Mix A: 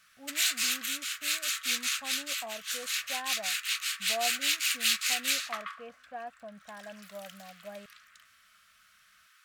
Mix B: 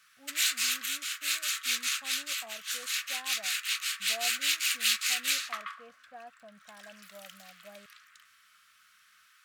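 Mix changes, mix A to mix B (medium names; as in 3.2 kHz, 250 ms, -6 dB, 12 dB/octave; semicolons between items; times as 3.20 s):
speech -7.0 dB; master: add high-pass 63 Hz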